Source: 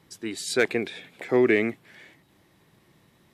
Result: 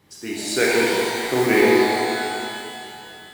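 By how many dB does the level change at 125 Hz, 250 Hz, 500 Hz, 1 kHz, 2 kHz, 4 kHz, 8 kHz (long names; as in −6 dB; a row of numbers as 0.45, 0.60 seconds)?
+5.5 dB, +5.5 dB, +6.5 dB, +15.0 dB, +7.5 dB, +11.0 dB, can't be measured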